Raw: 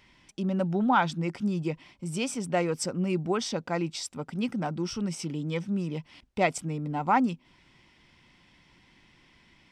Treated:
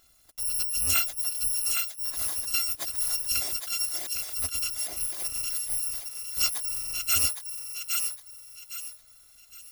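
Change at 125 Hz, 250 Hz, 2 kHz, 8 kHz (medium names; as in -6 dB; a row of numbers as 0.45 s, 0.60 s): -16.5 dB, -27.0 dB, -1.5 dB, +13.5 dB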